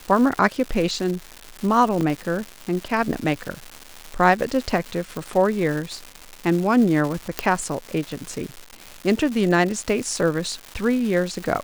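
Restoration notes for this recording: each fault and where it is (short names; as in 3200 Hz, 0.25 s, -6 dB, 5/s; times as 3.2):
crackle 360/s -27 dBFS
2.01 gap 3.5 ms
5.17 pop
7.39 pop -5 dBFS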